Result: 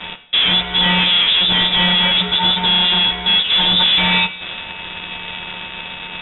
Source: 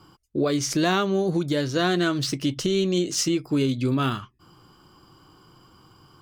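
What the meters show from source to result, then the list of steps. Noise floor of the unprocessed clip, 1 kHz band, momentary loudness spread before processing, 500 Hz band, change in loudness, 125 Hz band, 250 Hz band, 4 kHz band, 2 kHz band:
−56 dBFS, +9.0 dB, 4 LU, −5.5 dB, +11.5 dB, +1.0 dB, −2.0 dB, +21.5 dB, +14.5 dB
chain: every partial snapped to a pitch grid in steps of 4 semitones
parametric band 440 Hz +5.5 dB 0.98 octaves
downward compressor, threshold −24 dBFS, peak gain reduction 13 dB
fuzz pedal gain 46 dB, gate −47 dBFS
coupled-rooms reverb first 0.48 s, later 4.1 s, from −18 dB, DRR 8 dB
voice inversion scrambler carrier 3,700 Hz

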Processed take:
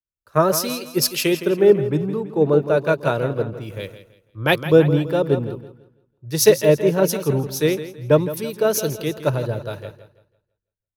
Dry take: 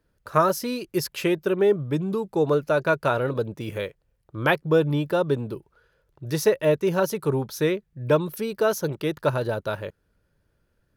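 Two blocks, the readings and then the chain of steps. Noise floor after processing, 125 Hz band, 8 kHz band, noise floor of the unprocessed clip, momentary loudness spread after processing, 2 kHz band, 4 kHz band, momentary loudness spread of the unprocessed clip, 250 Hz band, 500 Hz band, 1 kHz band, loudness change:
below −85 dBFS, +5.0 dB, +11.0 dB, −71 dBFS, 14 LU, +2.0 dB, +8.0 dB, 10 LU, +4.5 dB, +5.0 dB, +0.5 dB, +5.0 dB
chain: dynamic equaliser 1,200 Hz, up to −7 dB, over −36 dBFS, Q 1
repeating echo 166 ms, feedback 56%, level −9 dB
multiband upward and downward expander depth 100%
level +4.5 dB

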